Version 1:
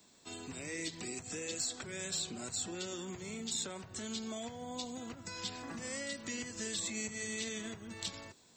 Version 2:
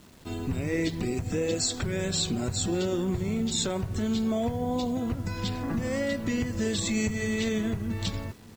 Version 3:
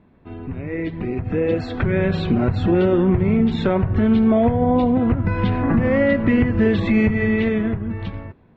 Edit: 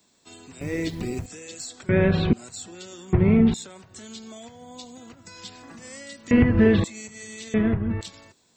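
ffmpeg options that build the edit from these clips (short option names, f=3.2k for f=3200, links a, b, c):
-filter_complex "[2:a]asplit=4[a][b][c][d];[0:a]asplit=6[e][f][g][h][i][j];[e]atrim=end=0.612[k];[1:a]atrim=start=0.608:end=1.262[l];[f]atrim=start=1.258:end=1.892[m];[a]atrim=start=1.888:end=2.332[n];[g]atrim=start=2.328:end=3.132[o];[b]atrim=start=3.128:end=3.542[p];[h]atrim=start=3.538:end=6.312[q];[c]atrim=start=6.308:end=6.842[r];[i]atrim=start=6.838:end=7.542[s];[d]atrim=start=7.538:end=8.012[t];[j]atrim=start=8.008[u];[k][l]acrossfade=d=0.004:c1=hsin:c2=hsin[v];[v][m]acrossfade=d=0.004:c1=hsin:c2=hsin[w];[w][n]acrossfade=d=0.004:c1=hsin:c2=hsin[x];[x][o]acrossfade=d=0.004:c1=hsin:c2=hsin[y];[y][p]acrossfade=d=0.004:c1=hsin:c2=hsin[z];[z][q]acrossfade=d=0.004:c1=hsin:c2=hsin[aa];[aa][r]acrossfade=d=0.004:c1=hsin:c2=hsin[ab];[ab][s]acrossfade=d=0.004:c1=hsin:c2=hsin[ac];[ac][t]acrossfade=d=0.004:c1=hsin:c2=hsin[ad];[ad][u]acrossfade=d=0.004:c1=hsin:c2=hsin"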